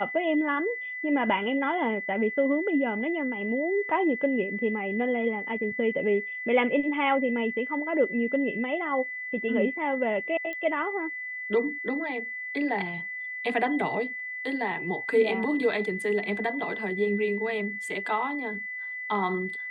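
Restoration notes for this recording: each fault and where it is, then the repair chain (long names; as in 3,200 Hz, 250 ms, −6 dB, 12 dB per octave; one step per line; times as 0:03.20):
whistle 2,000 Hz −33 dBFS
0:10.53: click −23 dBFS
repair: click removal
notch filter 2,000 Hz, Q 30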